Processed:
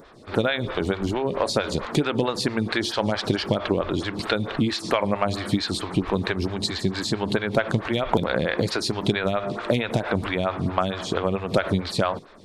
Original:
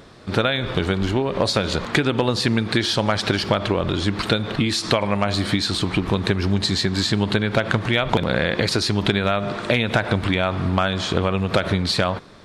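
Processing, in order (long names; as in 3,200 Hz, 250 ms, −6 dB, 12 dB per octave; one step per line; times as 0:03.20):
phaser with staggered stages 4.5 Hz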